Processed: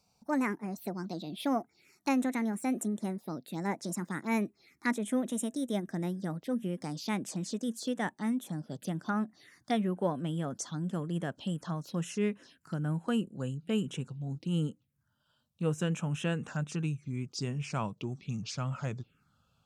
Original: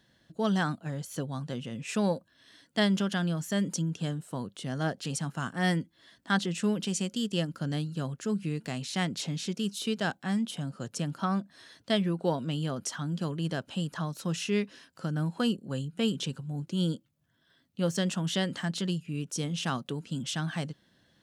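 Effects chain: gliding tape speed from 137% -> 79%; touch-sensitive phaser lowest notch 320 Hz, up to 4.6 kHz, full sweep at -29 dBFS; trim -2 dB

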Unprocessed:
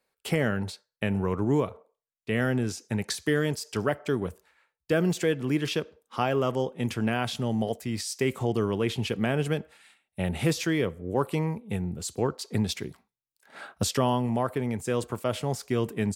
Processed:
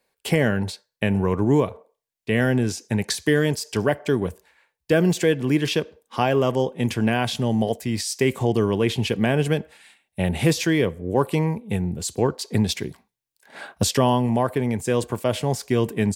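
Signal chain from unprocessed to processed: band-stop 1.3 kHz, Q 6.1; trim +6 dB

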